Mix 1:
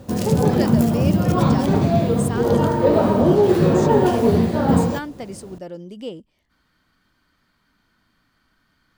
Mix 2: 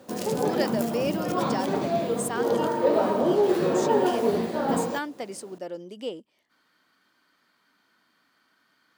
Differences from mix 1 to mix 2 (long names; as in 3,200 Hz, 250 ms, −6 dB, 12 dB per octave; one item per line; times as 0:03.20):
background −4.5 dB
master: add high-pass filter 310 Hz 12 dB per octave